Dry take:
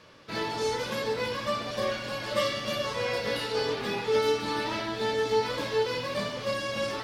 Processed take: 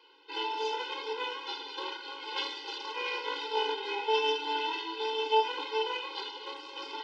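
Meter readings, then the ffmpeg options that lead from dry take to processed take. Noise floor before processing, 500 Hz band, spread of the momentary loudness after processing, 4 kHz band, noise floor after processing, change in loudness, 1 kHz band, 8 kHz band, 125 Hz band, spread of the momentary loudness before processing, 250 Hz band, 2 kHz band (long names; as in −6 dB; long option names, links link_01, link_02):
−37 dBFS, −6.5 dB, 11 LU, 0.0 dB, −46 dBFS, −3.5 dB, +0.5 dB, −11.5 dB, below −40 dB, 5 LU, −11.5 dB, −3.5 dB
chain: -af "aeval=exprs='0.211*(cos(1*acos(clip(val(0)/0.211,-1,1)))-cos(1*PI/2))+0.0841*(cos(4*acos(clip(val(0)/0.211,-1,1)))-cos(4*PI/2))':channel_layout=same,highpass=frequency=270:width=0.5412,highpass=frequency=270:width=1.3066,equalizer=frequency=320:width_type=q:width=4:gain=-8,equalizer=frequency=510:width_type=q:width=4:gain=-9,equalizer=frequency=740:width_type=q:width=4:gain=5,equalizer=frequency=1300:width_type=q:width=4:gain=-4,equalizer=frequency=1900:width_type=q:width=4:gain=-8,equalizer=frequency=3000:width_type=q:width=4:gain=6,lowpass=frequency=4400:width=0.5412,lowpass=frequency=4400:width=1.3066,afftfilt=real='re*eq(mod(floor(b*sr/1024/270),2),1)':imag='im*eq(mod(floor(b*sr/1024/270),2),1)':win_size=1024:overlap=0.75"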